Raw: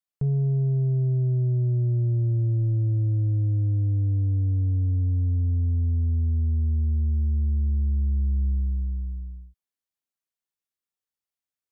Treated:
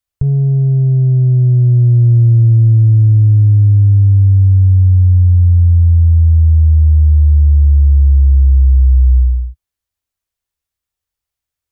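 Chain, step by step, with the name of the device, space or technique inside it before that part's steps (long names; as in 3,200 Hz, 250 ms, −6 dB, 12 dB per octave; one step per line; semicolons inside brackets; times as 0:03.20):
car stereo with a boomy subwoofer (low shelf with overshoot 120 Hz +13.5 dB, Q 1.5; brickwall limiter −12 dBFS, peak gain reduction 9 dB)
level +8 dB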